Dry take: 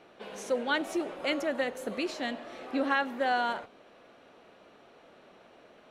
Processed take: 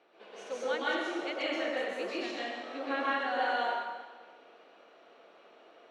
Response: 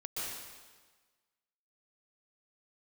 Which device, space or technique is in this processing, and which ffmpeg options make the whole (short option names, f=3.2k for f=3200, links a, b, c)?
supermarket ceiling speaker: -filter_complex "[0:a]highpass=330,lowpass=5.7k[a];[1:a]atrim=start_sample=2205[b];[a][b]afir=irnorm=-1:irlink=0,asettb=1/sr,asplit=3[c][d][e];[c]atrim=end=0.644[f];[d]atrim=start=0.64:end=1.54,asetpts=PTS-STARTPTS,afade=t=in:d=0.004:c=qsin,afade=t=out:st=0.896:d=0.004:c=qsin,lowpass=9.8k[g];[e]atrim=start=1.536[h];[f][g]acrossfade=d=0.004:c1=hsin:c2=qsin[i];[i][h]acrossfade=d=0.004:c1=qsin:c2=hsin,volume=-3dB"